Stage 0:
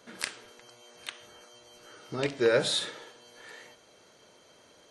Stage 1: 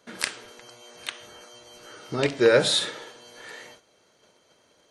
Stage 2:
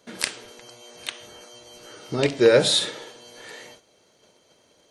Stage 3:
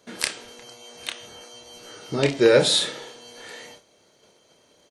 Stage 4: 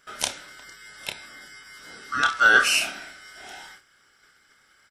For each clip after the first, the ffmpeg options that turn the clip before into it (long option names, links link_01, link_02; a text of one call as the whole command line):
ffmpeg -i in.wav -af "agate=range=-10dB:threshold=-56dB:ratio=16:detection=peak,volume=6dB" out.wav
ffmpeg -i in.wav -af "equalizer=frequency=1400:width_type=o:width=1.2:gain=-5,volume=3dB" out.wav
ffmpeg -i in.wav -filter_complex "[0:a]asplit=2[link_01][link_02];[link_02]adelay=29,volume=-7dB[link_03];[link_01][link_03]amix=inputs=2:normalize=0" out.wav
ffmpeg -i in.wav -af "afftfilt=real='real(if(lt(b,960),b+48*(1-2*mod(floor(b/48),2)),b),0)':imag='imag(if(lt(b,960),b+48*(1-2*mod(floor(b/48),2)),b),0)':win_size=2048:overlap=0.75,volume=-1dB" out.wav